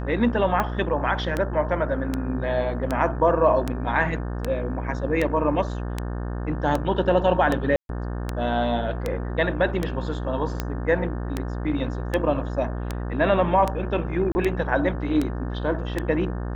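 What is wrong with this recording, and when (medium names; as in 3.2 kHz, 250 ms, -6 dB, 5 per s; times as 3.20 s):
buzz 60 Hz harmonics 30 -29 dBFS
tick 78 rpm -11 dBFS
7.76–7.89 s: dropout 132 ms
14.32–14.35 s: dropout 30 ms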